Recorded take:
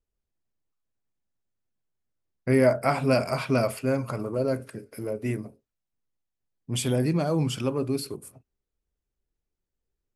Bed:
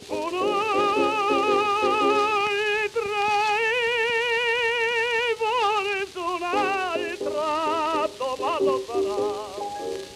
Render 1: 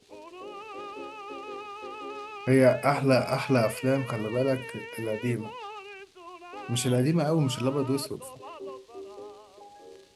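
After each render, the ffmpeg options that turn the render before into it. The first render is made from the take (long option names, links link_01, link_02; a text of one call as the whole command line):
ffmpeg -i in.wav -i bed.wav -filter_complex "[1:a]volume=-18dB[link_01];[0:a][link_01]amix=inputs=2:normalize=0" out.wav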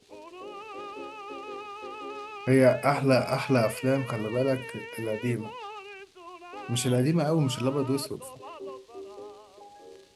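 ffmpeg -i in.wav -af anull out.wav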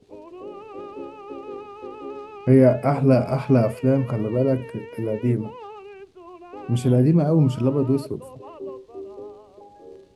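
ffmpeg -i in.wav -af "tiltshelf=frequency=940:gain=9" out.wav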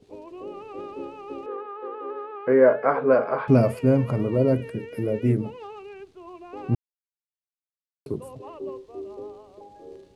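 ffmpeg -i in.wav -filter_complex "[0:a]asettb=1/sr,asplit=3[link_01][link_02][link_03];[link_01]atrim=end=1.464[link_04];[link_02]atrim=start=1.46:end=3.48,asetpts=PTS-STARTPTS,afade=type=in:duration=0.004:curve=qsin,afade=type=out:start_time=2.016:duration=0.004:curve=qsin,highpass=440,equalizer=frequency=470:width_type=q:width=4:gain=10,equalizer=frequency=670:width_type=q:width=4:gain=-3,equalizer=frequency=1100:width_type=q:width=4:gain=7,equalizer=frequency=1600:width_type=q:width=4:gain=10,equalizer=frequency=2600:width_type=q:width=4:gain=-9,lowpass=frequency=3100:width=0.5412,lowpass=frequency=3100:width=1.3066[link_05];[link_03]atrim=start=3.476[link_06];[link_04][link_05]acrossfade=duration=0.004:curve1=hsin:curve2=qsin[link_07];[link_07][link_06]acrossfade=duration=0.004:curve1=qsin:curve2=hsin,asettb=1/sr,asplit=3[link_08][link_09][link_10];[link_08]atrim=end=4.554[link_11];[link_09]atrim=start=4.55:end=5.9,asetpts=PTS-STARTPTS,afade=type=in:duration=0.004:curve=qsin,afade=type=out:start_time=1.346:duration=0.004:curve=qsin,bandreject=frequency=960:width=5.1[link_12];[link_10]atrim=start=5.896[link_13];[link_11][link_12]acrossfade=duration=0.004:curve1=hsin:curve2=qsin[link_14];[link_14][link_13]acrossfade=duration=0.004:curve1=qsin:curve2=hsin,asplit=3[link_15][link_16][link_17];[link_15]atrim=end=6.75,asetpts=PTS-STARTPTS,afade=type=out:start_time=6.746:duration=0.004:curve=hsin[link_18];[link_16]atrim=start=6.75:end=8.06,asetpts=PTS-STARTPTS,volume=0[link_19];[link_17]atrim=start=8.06,asetpts=PTS-STARTPTS,afade=type=in:duration=0.004:curve=hsin[link_20];[link_18][link_19][link_20]concat=n=3:v=0:a=1" out.wav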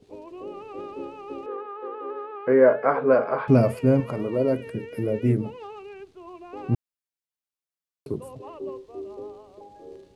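ffmpeg -i in.wav -filter_complex "[0:a]asettb=1/sr,asplit=3[link_01][link_02][link_03];[link_01]atrim=end=4.004[link_04];[link_02]atrim=start=4:end=4.67,asetpts=PTS-STARTPTS,afade=type=in:duration=0.004:curve=qsin,afade=type=out:start_time=0.666:duration=0.004:curve=qsin,equalizer=frequency=98:width=0.67:gain=-10[link_05];[link_03]atrim=start=4.666[link_06];[link_04][link_05]acrossfade=duration=0.004:curve1=hsin:curve2=qsin[link_07];[link_07][link_06]acrossfade=duration=0.004:curve1=qsin:curve2=hsin" out.wav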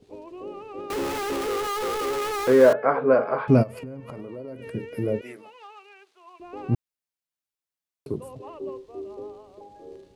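ffmpeg -i in.wav -filter_complex "[0:a]asettb=1/sr,asplit=3[link_01][link_02][link_03];[link_01]atrim=end=0.904[link_04];[link_02]atrim=start=0.9:end=2.73,asetpts=PTS-STARTPTS,afade=type=in:duration=0.004:curve=qsin,afade=type=out:start_time=1.826:duration=0.004:curve=qsin,aeval=exprs='val(0)+0.5*0.0562*sgn(val(0))':channel_layout=same[link_05];[link_03]atrim=start=2.726[link_06];[link_04][link_05]acrossfade=duration=0.004:curve1=hsin:curve2=qsin[link_07];[link_07][link_06]acrossfade=duration=0.004:curve1=qsin:curve2=hsin,asplit=3[link_08][link_09][link_10];[link_08]afade=type=out:start_time=3.62:duration=0.02[link_11];[link_09]acompressor=threshold=-33dB:ratio=12:attack=3.2:release=140:knee=1:detection=peak,afade=type=in:start_time=3.62:duration=0.02,afade=type=out:start_time=4.65:duration=0.02[link_12];[link_10]afade=type=in:start_time=4.65:duration=0.02[link_13];[link_11][link_12][link_13]amix=inputs=3:normalize=0,asettb=1/sr,asplit=3[link_14][link_15][link_16];[link_14]atrim=end=5.214[link_17];[link_15]atrim=start=5.21:end=6.4,asetpts=PTS-STARTPTS,afade=type=in:duration=0.004:curve=qsin,afade=type=out:start_time=1.186:duration=0.004:curve=qsin,highpass=940[link_18];[link_16]atrim=start=6.396[link_19];[link_17][link_18]acrossfade=duration=0.004:curve1=hsin:curve2=qsin[link_20];[link_20][link_19]acrossfade=duration=0.004:curve1=qsin:curve2=hsin" out.wav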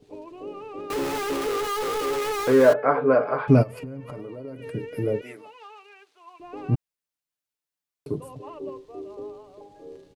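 ffmpeg -i in.wav -af "aecho=1:1:6.8:0.41" out.wav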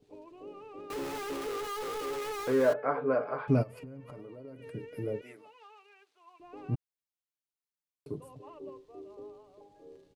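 ffmpeg -i in.wav -af "volume=-9.5dB" out.wav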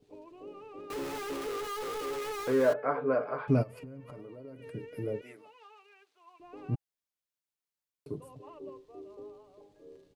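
ffmpeg -i in.wav -af "bandreject=frequency=820:width=26" out.wav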